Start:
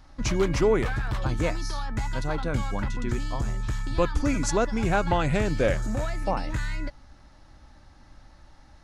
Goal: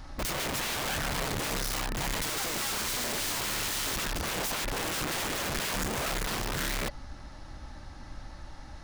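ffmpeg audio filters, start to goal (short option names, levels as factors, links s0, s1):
-filter_complex "[0:a]asettb=1/sr,asplit=3[s0][s1][s2];[s0]atrim=end=2.224[s3];[s1]atrim=start=2.22:end=3.96,asetpts=PTS-STARTPTS,afade=t=in:d=0.004:c=qsin,afade=t=out:st=1.736:d=0.004:c=qsin,asplit=2[s4][s5];[s5]highpass=f=720:p=1,volume=100,asoftclip=type=tanh:threshold=0.168[s6];[s4][s6]amix=inputs=2:normalize=0,lowpass=f=1900:p=1,volume=0.501[s7];[s2]atrim=start=3.956[s8];[s3][s7]acrossfade=d=0.004:c1=hsin:c2=qsin[s9];[s9][s8]acrossfade=d=0.004:c1=qsin:c2=hsin,aeval=exprs='(mod(17.8*val(0)+1,2)-1)/17.8':c=same,alimiter=level_in=3.55:limit=0.0631:level=0:latency=1:release=26,volume=0.282,volume=2.37"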